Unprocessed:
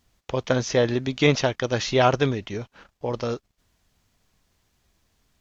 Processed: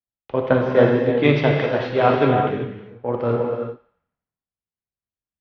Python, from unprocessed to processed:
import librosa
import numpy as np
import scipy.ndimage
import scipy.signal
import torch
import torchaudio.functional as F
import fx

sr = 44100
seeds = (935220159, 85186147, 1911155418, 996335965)

y = fx.highpass(x, sr, hz=140.0, slope=6)
y = fx.high_shelf(y, sr, hz=6400.0, db=-10.0)
y = fx.rider(y, sr, range_db=5, speed_s=0.5)
y = fx.air_absorb(y, sr, metres=430.0)
y = fx.echo_thinned(y, sr, ms=86, feedback_pct=69, hz=500.0, wet_db=-17)
y = fx.rev_gated(y, sr, seeds[0], gate_ms=420, shape='flat', drr_db=-1.0)
y = fx.band_widen(y, sr, depth_pct=100)
y = y * 10.0 ** (4.0 / 20.0)